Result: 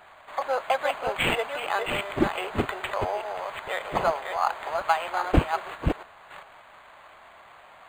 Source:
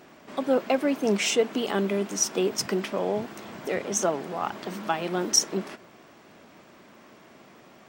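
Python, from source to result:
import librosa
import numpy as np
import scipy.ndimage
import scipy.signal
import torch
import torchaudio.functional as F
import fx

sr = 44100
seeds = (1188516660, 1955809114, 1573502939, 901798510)

y = fx.reverse_delay(x, sr, ms=402, wet_db=-5.0)
y = scipy.signal.sosfilt(scipy.signal.butter(4, 720.0, 'highpass', fs=sr, output='sos'), y)
y = fx.high_shelf(y, sr, hz=7900.0, db=-12.0)
y = np.interp(np.arange(len(y)), np.arange(len(y))[::8], y[::8])
y = y * librosa.db_to_amplitude(7.0)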